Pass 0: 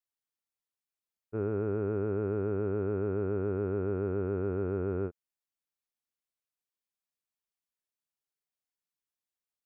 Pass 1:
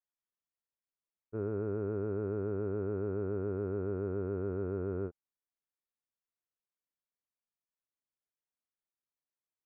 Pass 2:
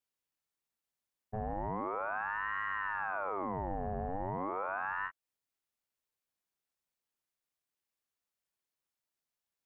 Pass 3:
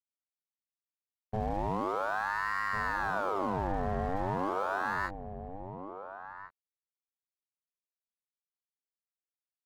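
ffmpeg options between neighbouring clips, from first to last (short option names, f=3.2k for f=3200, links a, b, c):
-af "lowpass=1.7k,bandreject=f=800:w=13,volume=-3.5dB"
-af "alimiter=level_in=8dB:limit=-24dB:level=0:latency=1:release=250,volume=-8dB,aeval=exprs='val(0)*sin(2*PI*900*n/s+900*0.65/0.38*sin(2*PI*0.38*n/s))':c=same,volume=7dB"
-filter_complex "[0:a]asplit=2[a][b];[b]adynamicsmooth=sensitivity=6:basefreq=820,volume=-0.5dB[c];[a][c]amix=inputs=2:normalize=0,aeval=exprs='sgn(val(0))*max(abs(val(0))-0.00316,0)':c=same,asplit=2[d][e];[e]adelay=1399,volume=-9dB,highshelf=f=4k:g=-31.5[f];[d][f]amix=inputs=2:normalize=0"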